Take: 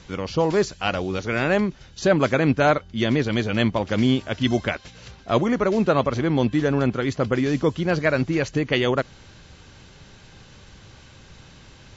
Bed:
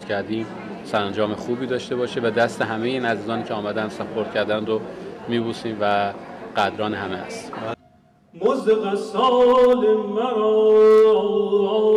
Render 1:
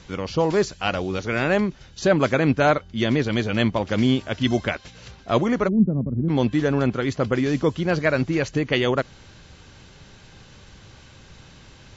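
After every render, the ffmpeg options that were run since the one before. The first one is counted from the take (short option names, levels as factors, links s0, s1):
-filter_complex "[0:a]asplit=3[s0][s1][s2];[s0]afade=t=out:st=5.67:d=0.02[s3];[s1]lowpass=f=210:t=q:w=1.9,afade=t=in:st=5.67:d=0.02,afade=t=out:st=6.28:d=0.02[s4];[s2]afade=t=in:st=6.28:d=0.02[s5];[s3][s4][s5]amix=inputs=3:normalize=0"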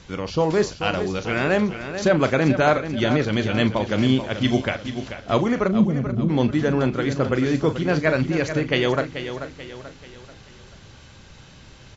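-filter_complex "[0:a]asplit=2[s0][s1];[s1]adelay=38,volume=0.251[s2];[s0][s2]amix=inputs=2:normalize=0,aecho=1:1:436|872|1308|1744:0.316|0.133|0.0558|0.0234"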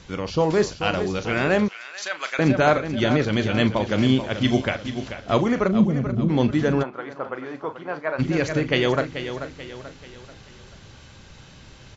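-filter_complex "[0:a]asettb=1/sr,asplit=3[s0][s1][s2];[s0]atrim=end=1.684[s3];[s1]atrim=start=1.68:end=2.39,asetpts=PTS-STARTPTS,afade=t=in:d=0.004:c=qsin,afade=t=out:st=0.706:d=0.004:c=qsin,highpass=1500[s4];[s2]atrim=start=2.386[s5];[s3][s4]acrossfade=d=0.004:c1=hsin:c2=qsin[s6];[s6][s5]acrossfade=d=0.004:c1=qsin:c2=hsin,asplit=3[s7][s8][s9];[s7]afade=t=out:st=6.82:d=0.02[s10];[s8]bandpass=f=960:t=q:w=1.7,afade=t=in:st=6.82:d=0.02,afade=t=out:st=8.18:d=0.02[s11];[s9]afade=t=in:st=8.18:d=0.02[s12];[s10][s11][s12]amix=inputs=3:normalize=0"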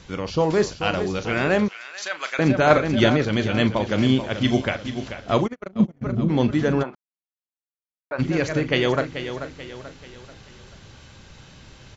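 -filter_complex "[0:a]asettb=1/sr,asplit=3[s0][s1][s2];[s0]atrim=end=2.704[s3];[s1]atrim=start=2.7:end=3.1,asetpts=PTS-STARTPTS,afade=t=in:d=0.004:c=qsin,afade=t=out:st=0.396:d=0.004:c=qsin,acontrast=21[s4];[s2]atrim=start=3.096[s5];[s3][s4]acrossfade=d=0.004:c1=hsin:c2=qsin[s6];[s6][s5]acrossfade=d=0.004:c1=qsin:c2=hsin,asplit=3[s7][s8][s9];[s7]afade=t=out:st=5.46:d=0.02[s10];[s8]agate=range=0.00398:threshold=0.126:ratio=16:release=100:detection=peak,afade=t=in:st=5.46:d=0.02,afade=t=out:st=6.01:d=0.02[s11];[s9]afade=t=in:st=6.01:d=0.02[s12];[s10][s11][s12]amix=inputs=3:normalize=0,asplit=3[s13][s14][s15];[s13]atrim=end=6.95,asetpts=PTS-STARTPTS,afade=t=out:st=6.946:d=0.004:c=hsin[s16];[s14]atrim=start=6.95:end=8.11,asetpts=PTS-STARTPTS,volume=0[s17];[s15]atrim=start=8.11,asetpts=PTS-STARTPTS,afade=t=in:d=0.004:c=hsin[s18];[s16][s17][s18]concat=n=3:v=0:a=1"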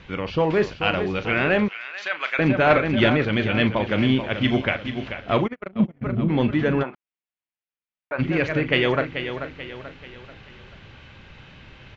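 -af "asoftclip=type=tanh:threshold=0.355,lowpass=f=2600:t=q:w=1.8"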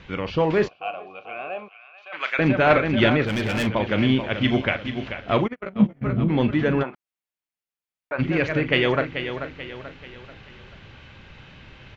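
-filter_complex "[0:a]asplit=3[s0][s1][s2];[s0]afade=t=out:st=0.67:d=0.02[s3];[s1]asplit=3[s4][s5][s6];[s4]bandpass=f=730:t=q:w=8,volume=1[s7];[s5]bandpass=f=1090:t=q:w=8,volume=0.501[s8];[s6]bandpass=f=2440:t=q:w=8,volume=0.355[s9];[s7][s8][s9]amix=inputs=3:normalize=0,afade=t=in:st=0.67:d=0.02,afade=t=out:st=2.12:d=0.02[s10];[s2]afade=t=in:st=2.12:d=0.02[s11];[s3][s10][s11]amix=inputs=3:normalize=0,asplit=3[s12][s13][s14];[s12]afade=t=out:st=3.25:d=0.02[s15];[s13]volume=10.6,asoftclip=hard,volume=0.0944,afade=t=in:st=3.25:d=0.02,afade=t=out:st=3.66:d=0.02[s16];[s14]afade=t=in:st=3.66:d=0.02[s17];[s15][s16][s17]amix=inputs=3:normalize=0,asettb=1/sr,asplit=3[s18][s19][s20];[s18]atrim=end=5.614[s21];[s19]atrim=start=5.61:end=6.24,asetpts=PTS-STARTPTS,afade=t=in:d=0.004:c=qsin,afade=t=out:st=0.626:d=0.004:c=qsin,asplit=2[s22][s23];[s23]adelay=15,volume=0.708[s24];[s22][s24]amix=inputs=2:normalize=0,atrim=end_sample=27783[s25];[s20]atrim=start=6.236[s26];[s21][s25]acrossfade=d=0.004:c1=hsin:c2=qsin[s27];[s27][s26]acrossfade=d=0.004:c1=qsin:c2=hsin"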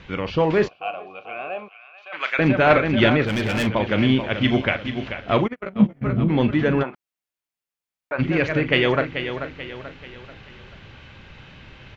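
-af "volume=1.19"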